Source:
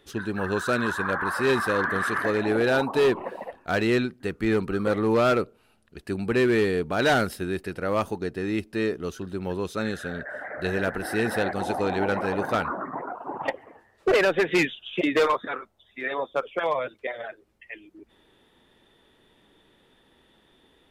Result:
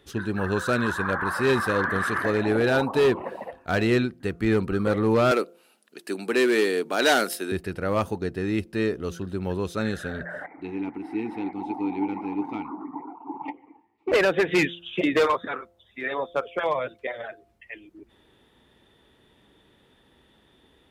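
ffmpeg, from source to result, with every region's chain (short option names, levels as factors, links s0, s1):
-filter_complex "[0:a]asettb=1/sr,asplit=3[s0][s1][s2];[s0]atrim=end=5.314[s3];[s1]atrim=start=5.31:end=7.52,asetpts=PTS-STARTPTS,afade=t=in:d=0.004:c=qsin,afade=t=out:st=2.206:d=0.004:c=qsin,highpass=f=260:w=0.5412,highpass=f=260:w=1.3066,highshelf=f=3600:g=9.5[s4];[s2]atrim=start=7.516[s5];[s3][s4]acrossfade=d=0.004:c1=hsin:c2=qsin[s6];[s6][s5]acrossfade=d=0.004:c1=qsin:c2=hsin,asettb=1/sr,asplit=3[s7][s8][s9];[s7]atrim=end=10.464[s10];[s8]atrim=start=10.46:end=14.12,asetpts=PTS-STARTPTS,afade=t=in:d=0.004:c=qsin,afade=t=out:st=3.656:d=0.004:c=qsin,asplit=3[s11][s12][s13];[s11]bandpass=f=300:t=q:w=8,volume=1[s14];[s12]bandpass=f=870:t=q:w=8,volume=0.501[s15];[s13]bandpass=f=2240:t=q:w=8,volume=0.355[s16];[s14][s15][s16]amix=inputs=3:normalize=0,acontrast=62[s17];[s9]atrim=start=14.116[s18];[s10][s17]acrossfade=d=0.004:c1=hsin:c2=qsin[s19];[s19][s18]acrossfade=d=0.004:c1=qsin:c2=hsin,highpass=51,lowshelf=f=120:g=8.5,bandreject=f=172.4:t=h:w=4,bandreject=f=344.8:t=h:w=4,bandreject=f=517.2:t=h:w=4,bandreject=f=689.6:t=h:w=4"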